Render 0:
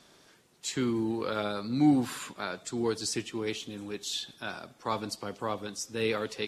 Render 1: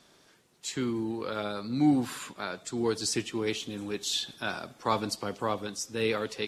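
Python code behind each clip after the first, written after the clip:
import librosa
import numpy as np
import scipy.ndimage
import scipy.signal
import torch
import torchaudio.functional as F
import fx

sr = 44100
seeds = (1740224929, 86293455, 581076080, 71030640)

y = fx.rider(x, sr, range_db=10, speed_s=2.0)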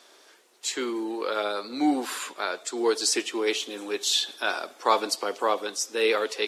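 y = scipy.signal.sosfilt(scipy.signal.butter(4, 350.0, 'highpass', fs=sr, output='sos'), x)
y = y * 10.0 ** (6.5 / 20.0)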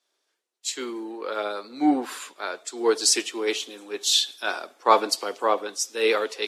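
y = fx.band_widen(x, sr, depth_pct=70)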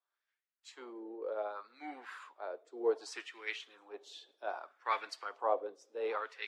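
y = fx.wah_lfo(x, sr, hz=0.65, low_hz=460.0, high_hz=2000.0, q=2.4)
y = y * 10.0 ** (-5.5 / 20.0)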